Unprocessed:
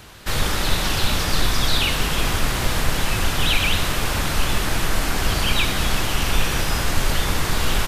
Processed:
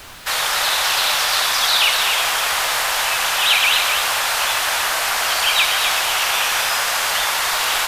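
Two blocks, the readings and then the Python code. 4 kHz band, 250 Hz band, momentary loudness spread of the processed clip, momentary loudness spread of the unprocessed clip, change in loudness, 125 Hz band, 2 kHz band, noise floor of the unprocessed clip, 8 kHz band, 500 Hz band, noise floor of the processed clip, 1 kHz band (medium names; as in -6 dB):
+7.0 dB, -17.5 dB, 4 LU, 3 LU, +5.5 dB, under -20 dB, +7.0 dB, -24 dBFS, +7.0 dB, -0.5 dB, -21 dBFS, +6.5 dB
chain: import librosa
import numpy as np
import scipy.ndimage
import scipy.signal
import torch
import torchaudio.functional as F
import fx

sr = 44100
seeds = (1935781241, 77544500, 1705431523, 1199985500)

y = scipy.signal.sosfilt(scipy.signal.butter(4, 650.0, 'highpass', fs=sr, output='sos'), x)
y = fx.dmg_noise_colour(y, sr, seeds[0], colour='pink', level_db=-50.0)
y = y + 10.0 ** (-6.5 / 20.0) * np.pad(y, (int(252 * sr / 1000.0), 0))[:len(y)]
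y = y * librosa.db_to_amplitude(6.0)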